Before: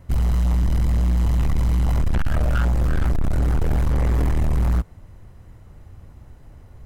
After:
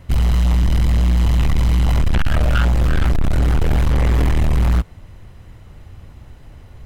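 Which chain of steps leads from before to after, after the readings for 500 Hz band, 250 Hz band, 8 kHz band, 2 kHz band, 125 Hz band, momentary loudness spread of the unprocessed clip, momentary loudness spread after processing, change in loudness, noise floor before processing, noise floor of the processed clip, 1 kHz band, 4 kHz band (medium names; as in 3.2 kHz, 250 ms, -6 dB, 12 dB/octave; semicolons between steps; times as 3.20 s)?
+4.0 dB, +4.0 dB, no reading, +7.0 dB, +4.0 dB, 3 LU, 3 LU, +4.0 dB, -46 dBFS, -42 dBFS, +5.0 dB, +10.5 dB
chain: peaking EQ 3.1 kHz +7.5 dB 1.4 oct; trim +4 dB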